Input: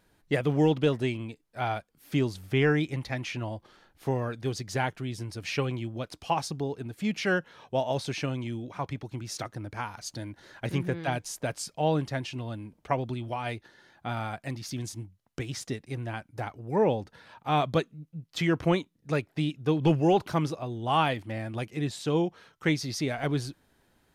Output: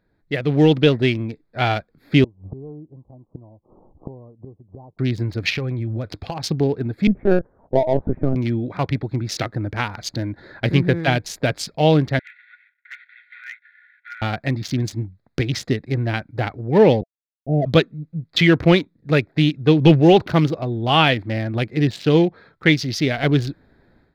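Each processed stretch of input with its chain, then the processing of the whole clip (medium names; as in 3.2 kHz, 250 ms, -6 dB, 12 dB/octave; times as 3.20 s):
2.24–4.99 s: steep low-pass 1.1 kHz 96 dB/octave + inverted gate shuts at -31 dBFS, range -24 dB
5.49–6.44 s: peaking EQ 100 Hz +7 dB 0.67 oct + compression 8:1, threshold -34 dBFS + tape noise reduction on one side only decoder only
7.07–8.36 s: gate -50 dBFS, range -11 dB + low-pass 1 kHz 24 dB/octave + LPC vocoder at 8 kHz pitch kept
12.19–14.22 s: CVSD coder 16 kbps + rippled Chebyshev high-pass 1.4 kHz, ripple 9 dB + tilt EQ +2.5 dB/octave
17.01–17.66 s: small samples zeroed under -35.5 dBFS + rippled Chebyshev low-pass 690 Hz, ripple 3 dB
whole clip: local Wiener filter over 15 samples; graphic EQ 1/2/4/8 kHz -7/+4/+7/-10 dB; level rider gain up to 13.5 dB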